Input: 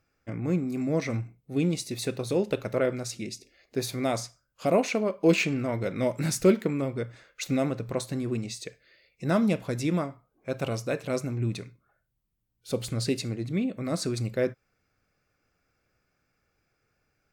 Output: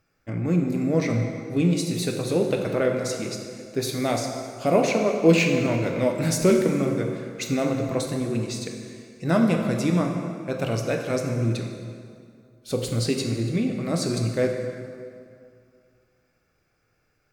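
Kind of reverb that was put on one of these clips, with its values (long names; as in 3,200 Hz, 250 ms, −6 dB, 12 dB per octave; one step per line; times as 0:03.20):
dense smooth reverb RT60 2.3 s, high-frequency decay 0.7×, DRR 2.5 dB
level +2.5 dB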